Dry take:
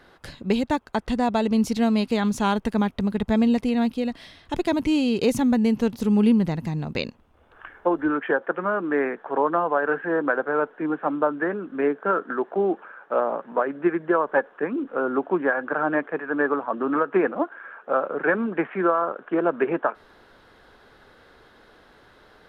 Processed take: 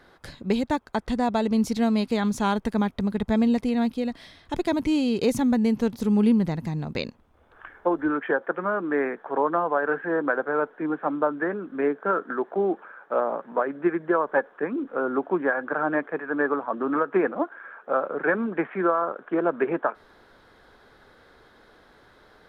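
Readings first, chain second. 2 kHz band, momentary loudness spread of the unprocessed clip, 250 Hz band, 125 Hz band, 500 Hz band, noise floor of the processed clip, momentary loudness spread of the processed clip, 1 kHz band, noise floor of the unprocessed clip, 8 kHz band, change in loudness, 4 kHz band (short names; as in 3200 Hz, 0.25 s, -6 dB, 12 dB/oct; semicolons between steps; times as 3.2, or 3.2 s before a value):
-1.5 dB, 7 LU, -1.5 dB, -1.5 dB, -1.5 dB, -56 dBFS, 7 LU, -1.5 dB, -54 dBFS, n/a, -1.5 dB, -2.5 dB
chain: bell 2800 Hz -5.5 dB 0.21 oct; gain -1.5 dB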